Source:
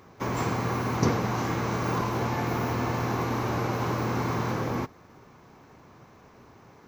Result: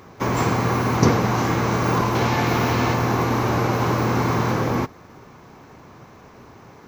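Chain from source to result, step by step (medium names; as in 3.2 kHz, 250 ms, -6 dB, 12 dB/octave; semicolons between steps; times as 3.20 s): 2.15–2.94 s: peaking EQ 3.5 kHz +5.5 dB 1.7 oct; trim +7.5 dB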